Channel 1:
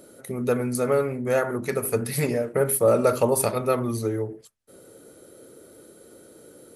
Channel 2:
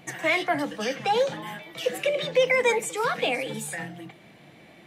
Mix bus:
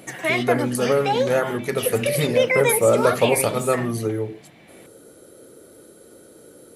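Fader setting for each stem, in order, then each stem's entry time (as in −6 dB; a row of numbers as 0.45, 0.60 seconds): +2.0, +1.5 decibels; 0.00, 0.00 seconds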